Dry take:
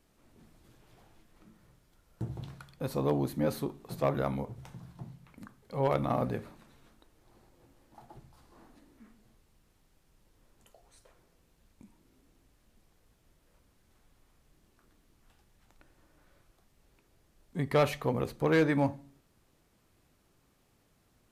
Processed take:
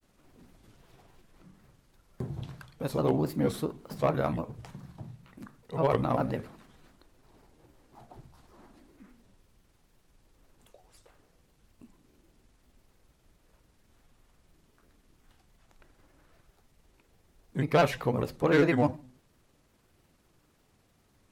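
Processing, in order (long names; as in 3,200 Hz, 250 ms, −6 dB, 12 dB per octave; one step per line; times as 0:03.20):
granular cloud, spray 11 ms, pitch spread up and down by 3 semitones
level +3.5 dB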